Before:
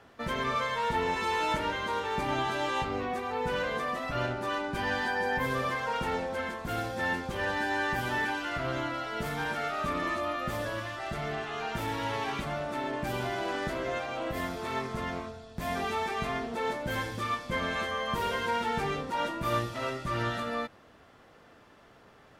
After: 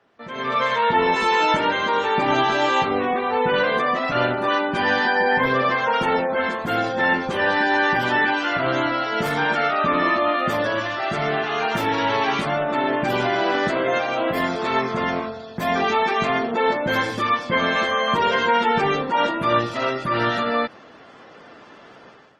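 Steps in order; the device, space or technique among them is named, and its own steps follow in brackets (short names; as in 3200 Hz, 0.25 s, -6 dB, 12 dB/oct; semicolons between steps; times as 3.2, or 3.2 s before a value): noise-suppressed video call (HPF 170 Hz 12 dB/oct; spectral gate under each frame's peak -30 dB strong; AGC gain up to 17 dB; gain -4.5 dB; Opus 20 kbps 48000 Hz)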